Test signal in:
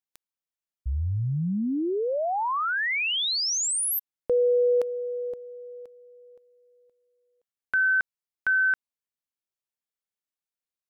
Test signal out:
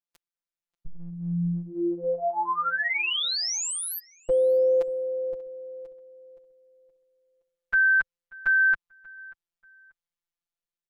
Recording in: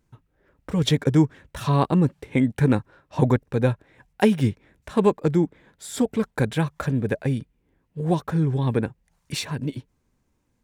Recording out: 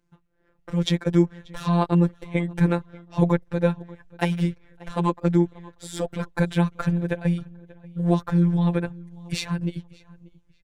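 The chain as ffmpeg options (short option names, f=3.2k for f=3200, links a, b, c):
-filter_complex "[0:a]asubboost=boost=7.5:cutoff=76,afftfilt=real='hypot(re,im)*cos(PI*b)':imag='0':win_size=1024:overlap=0.75,dynaudnorm=f=340:g=5:m=4dB,highshelf=f=8.4k:g=-10,asplit=2[a][b];[b]adelay=586,lowpass=f=3.3k:p=1,volume=-22dB,asplit=2[c][d];[d]adelay=586,lowpass=f=3.3k:p=1,volume=0.28[e];[c][e]amix=inputs=2:normalize=0[f];[a][f]amix=inputs=2:normalize=0"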